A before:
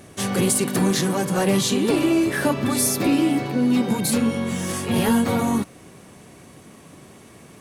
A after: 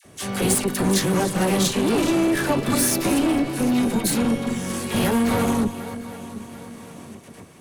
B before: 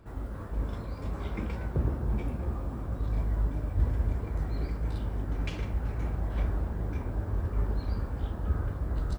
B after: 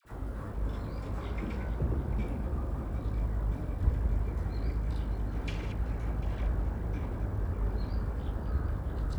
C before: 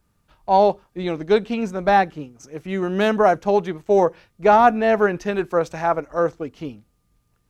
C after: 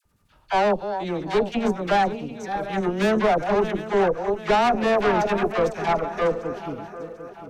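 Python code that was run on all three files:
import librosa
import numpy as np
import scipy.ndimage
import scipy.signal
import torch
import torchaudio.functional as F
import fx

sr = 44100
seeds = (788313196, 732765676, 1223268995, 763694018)

p1 = fx.reverse_delay_fb(x, sr, ms=373, feedback_pct=56, wet_db=-10)
p2 = fx.level_steps(p1, sr, step_db=22)
p3 = p1 + (p2 * 10.0 ** (2.0 / 20.0))
p4 = fx.tube_stage(p3, sr, drive_db=14.0, bias=0.55)
p5 = fx.dispersion(p4, sr, late='lows', ms=52.0, hz=980.0)
y = p5 * 10.0 ** (-1.5 / 20.0)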